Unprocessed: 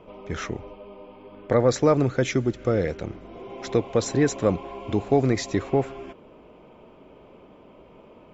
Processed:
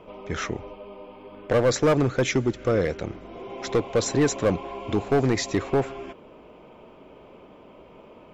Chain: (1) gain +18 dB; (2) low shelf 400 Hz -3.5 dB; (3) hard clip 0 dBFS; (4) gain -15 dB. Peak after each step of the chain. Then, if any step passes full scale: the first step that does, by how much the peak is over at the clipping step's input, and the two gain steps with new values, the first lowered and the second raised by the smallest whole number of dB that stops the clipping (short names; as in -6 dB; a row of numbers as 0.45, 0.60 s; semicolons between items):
+10.5, +9.0, 0.0, -15.0 dBFS; step 1, 9.0 dB; step 1 +9 dB, step 4 -6 dB